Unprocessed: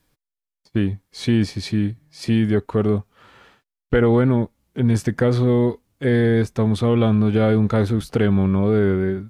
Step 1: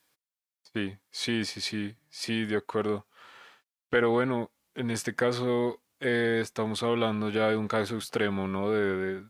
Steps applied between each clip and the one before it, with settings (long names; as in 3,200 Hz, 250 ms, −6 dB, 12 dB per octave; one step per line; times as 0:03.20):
high-pass filter 930 Hz 6 dB per octave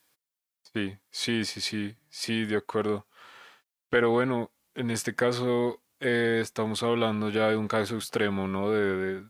high-shelf EQ 8,800 Hz +4 dB
level +1 dB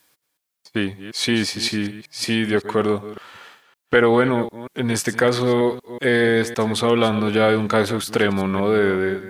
delay that plays each chunk backwards 187 ms, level −13.5 dB
level +8 dB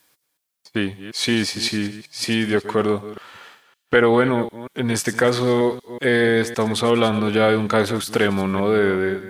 delay with a high-pass on its return 96 ms, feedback 60%, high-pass 5,200 Hz, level −13.5 dB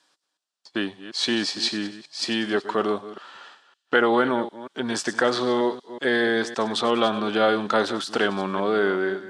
loudspeaker in its box 300–7,300 Hz, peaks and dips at 470 Hz −6 dB, 2,200 Hz −10 dB, 6,400 Hz −4 dB